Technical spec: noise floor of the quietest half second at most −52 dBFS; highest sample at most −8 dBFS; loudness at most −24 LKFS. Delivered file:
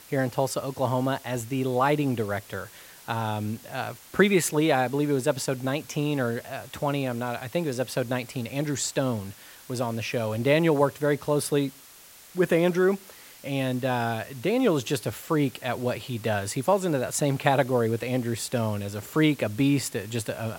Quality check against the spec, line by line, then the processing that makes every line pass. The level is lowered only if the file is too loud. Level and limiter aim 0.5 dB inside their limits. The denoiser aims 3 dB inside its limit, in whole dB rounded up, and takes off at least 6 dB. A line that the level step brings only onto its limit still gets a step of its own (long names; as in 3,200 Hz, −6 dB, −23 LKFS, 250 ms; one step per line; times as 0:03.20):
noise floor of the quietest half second −50 dBFS: out of spec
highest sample −5.5 dBFS: out of spec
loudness −26.5 LKFS: in spec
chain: broadband denoise 6 dB, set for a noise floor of −50 dBFS
brickwall limiter −8.5 dBFS